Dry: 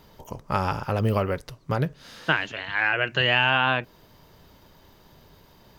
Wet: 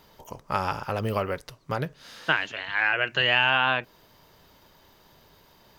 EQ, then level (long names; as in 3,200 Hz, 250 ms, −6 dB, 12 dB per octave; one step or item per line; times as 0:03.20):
low-shelf EQ 370 Hz −7.5 dB
0.0 dB